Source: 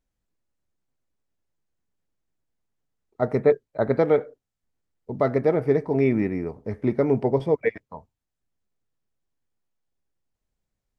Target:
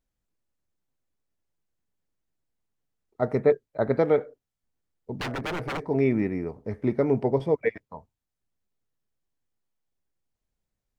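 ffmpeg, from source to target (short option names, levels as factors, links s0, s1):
-filter_complex "[0:a]asettb=1/sr,asplit=3[s0][s1][s2];[s0]atrim=end=5.134[s3];[s1]atrim=start=5.13:end=5.82,asetpts=PTS-STARTPTS,afade=t=in:d=0.004:c=qsin,afade=t=out:st=0.686:d=0.004:c=qsin,aeval=exprs='0.0668*(abs(mod(val(0)/0.0668+3,4)-2)-1)':c=same[s4];[s2]atrim=start=5.816[s5];[s3][s4]acrossfade=d=0.004:c1=hsin:c2=qsin[s6];[s6][s5]acrossfade=d=0.004:c1=qsin:c2=hsin,volume=0.794"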